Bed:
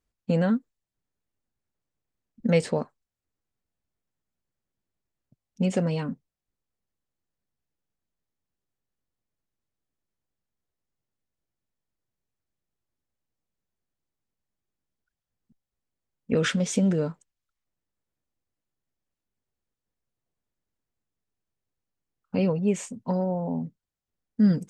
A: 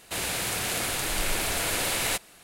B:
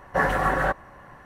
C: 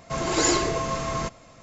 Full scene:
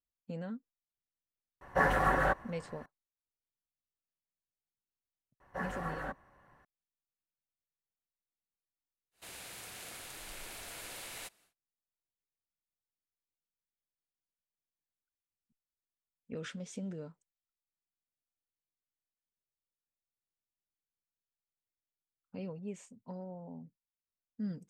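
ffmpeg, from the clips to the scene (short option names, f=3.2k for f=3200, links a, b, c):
-filter_complex "[2:a]asplit=2[a][b];[0:a]volume=-18dB[c];[1:a]lowshelf=f=440:g=-4[d];[a]atrim=end=1.25,asetpts=PTS-STARTPTS,volume=-5.5dB,afade=t=in:d=0.004:c=hsin,afade=t=out:st=1.246:d=0.004:c=hsin,adelay=1610[e];[b]atrim=end=1.25,asetpts=PTS-STARTPTS,volume=-17dB,afade=t=in:d=0.004:c=hsin,afade=t=out:st=1.246:d=0.004:c=hsin,adelay=5400[f];[d]atrim=end=2.43,asetpts=PTS-STARTPTS,volume=-18dB,afade=t=in:d=0.1,afade=t=out:st=2.33:d=0.1,adelay=9110[g];[c][e][f][g]amix=inputs=4:normalize=0"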